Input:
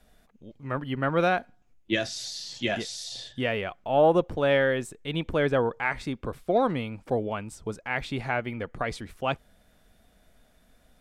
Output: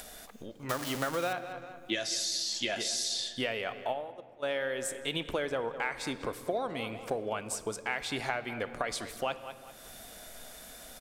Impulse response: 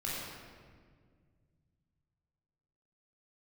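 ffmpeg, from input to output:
-filter_complex "[0:a]asettb=1/sr,asplit=3[link_01][link_02][link_03];[link_01]atrim=end=0.694[link_04];[link_02]atrim=start=0.69:end=1.33,asetpts=PTS-STARTPTS,afade=type=in:duration=0.004:curve=qsin,afade=type=out:start_time=0.636:duration=0.004:curve=qsin,aeval=exprs='val(0)+0.5*0.0335*sgn(val(0))':channel_layout=same[link_05];[link_03]atrim=start=1.326[link_06];[link_04][link_05]acrossfade=duration=0.004:curve1=hsin:curve2=qsin[link_07];[link_07][link_06]acrossfade=duration=0.004:curve1=qsin:curve2=hsin,bass=frequency=250:gain=-12,treble=frequency=4000:gain=9,acompressor=mode=upward:threshold=-39dB:ratio=2.5,asplit=2[link_08][link_09];[link_09]adelay=197,lowpass=frequency=3700:poles=1,volume=-18dB,asplit=2[link_10][link_11];[link_11]adelay=197,lowpass=frequency=3700:poles=1,volume=0.38,asplit=2[link_12][link_13];[link_13]adelay=197,lowpass=frequency=3700:poles=1,volume=0.38[link_14];[link_08][link_10][link_12][link_14]amix=inputs=4:normalize=0,acompressor=threshold=-31dB:ratio=12,asplit=3[link_15][link_16][link_17];[link_15]afade=type=out:start_time=3.92:duration=0.02[link_18];[link_16]agate=range=-29dB:threshold=-31dB:ratio=16:detection=peak,afade=type=in:start_time=3.92:duration=0.02,afade=type=out:start_time=4.42:duration=0.02[link_19];[link_17]afade=type=in:start_time=4.42:duration=0.02[link_20];[link_18][link_19][link_20]amix=inputs=3:normalize=0,asplit=2[link_21][link_22];[1:a]atrim=start_sample=2205[link_23];[link_22][link_23]afir=irnorm=-1:irlink=0,volume=-15.5dB[link_24];[link_21][link_24]amix=inputs=2:normalize=0,volume=1.5dB"

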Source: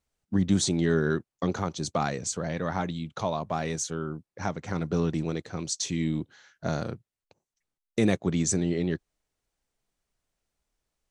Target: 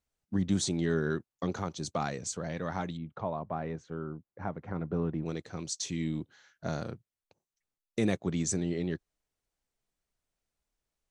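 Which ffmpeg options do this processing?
ffmpeg -i in.wav -filter_complex "[0:a]asettb=1/sr,asplit=3[link_01][link_02][link_03];[link_01]atrim=end=2.974[link_04];[link_02]atrim=start=2.97:end=5.26,asetpts=PTS-STARTPTS,afade=type=in:duration=0.004:curve=qsin,afade=type=out:start_time=2.286:duration=0.004:curve=qsin,lowpass=1500[link_05];[link_03]atrim=start=5.256[link_06];[link_04][link_05]acrossfade=duration=0.004:curve1=hsin:curve2=qsin[link_07];[link_07][link_06]acrossfade=duration=0.004:curve1=qsin:curve2=hsin,volume=-5dB" out.wav

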